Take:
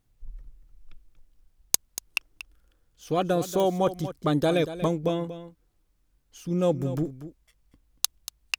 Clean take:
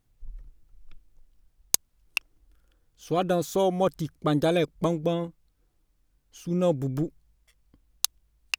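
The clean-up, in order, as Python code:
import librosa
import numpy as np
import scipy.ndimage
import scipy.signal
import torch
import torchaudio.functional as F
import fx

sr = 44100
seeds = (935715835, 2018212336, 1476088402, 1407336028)

y = fx.fix_declick_ar(x, sr, threshold=10.0)
y = fx.fix_echo_inverse(y, sr, delay_ms=236, level_db=-13.0)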